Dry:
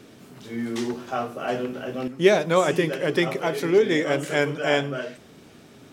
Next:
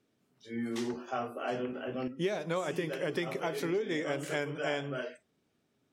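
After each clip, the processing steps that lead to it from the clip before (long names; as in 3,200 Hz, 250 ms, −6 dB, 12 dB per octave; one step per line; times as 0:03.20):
noise reduction from a noise print of the clip's start 21 dB
downward compressor 6 to 1, threshold −23 dBFS, peak gain reduction 12 dB
level −6 dB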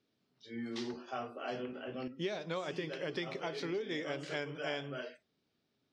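low-pass with resonance 4,600 Hz, resonance Q 2.4
level −5.5 dB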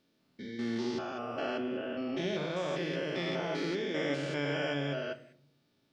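spectrum averaged block by block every 200 ms
convolution reverb RT60 0.60 s, pre-delay 3 ms, DRR 6 dB
level +7 dB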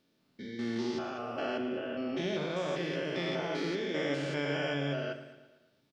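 repeating echo 113 ms, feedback 57%, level −14 dB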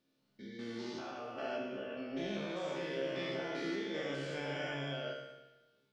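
tuned comb filter 67 Hz, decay 0.85 s, harmonics all, mix 90%
level +6 dB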